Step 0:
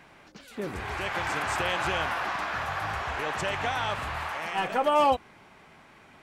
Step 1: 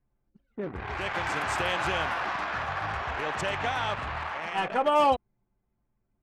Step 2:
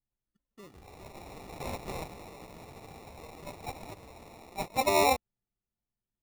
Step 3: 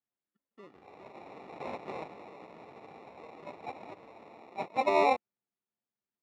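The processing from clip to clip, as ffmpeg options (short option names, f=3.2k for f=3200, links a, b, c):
-af "anlmdn=6.31"
-af "agate=range=-14dB:threshold=-26dB:ratio=16:detection=peak,acrusher=samples=28:mix=1:aa=0.000001,volume=-2.5dB"
-af "highpass=240,lowpass=2.5k"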